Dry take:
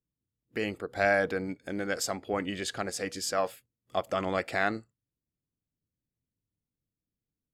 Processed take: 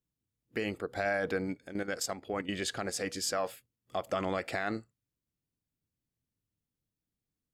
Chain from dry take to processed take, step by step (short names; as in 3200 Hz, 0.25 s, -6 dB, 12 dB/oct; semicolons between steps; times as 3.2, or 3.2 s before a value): 1.64–2.49 level quantiser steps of 11 dB; limiter -21.5 dBFS, peak gain reduction 8.5 dB